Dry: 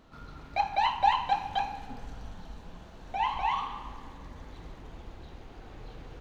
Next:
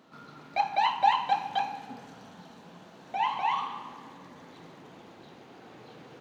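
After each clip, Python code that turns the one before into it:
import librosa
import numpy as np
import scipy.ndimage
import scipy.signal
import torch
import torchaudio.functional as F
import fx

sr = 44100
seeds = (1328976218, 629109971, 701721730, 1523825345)

y = scipy.signal.sosfilt(scipy.signal.butter(4, 150.0, 'highpass', fs=sr, output='sos'), x)
y = y * 10.0 ** (1.0 / 20.0)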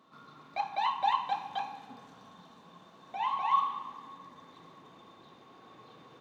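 y = fx.small_body(x, sr, hz=(1100.0, 3600.0), ring_ms=60, db=17)
y = y * 10.0 ** (-7.0 / 20.0)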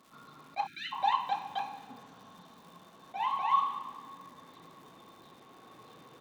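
y = fx.dmg_crackle(x, sr, seeds[0], per_s=310.0, level_db=-50.0)
y = fx.spec_erase(y, sr, start_s=0.67, length_s=0.25, low_hz=380.0, high_hz=1300.0)
y = fx.attack_slew(y, sr, db_per_s=580.0)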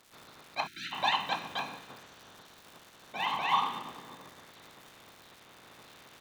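y = fx.spec_clip(x, sr, under_db=19)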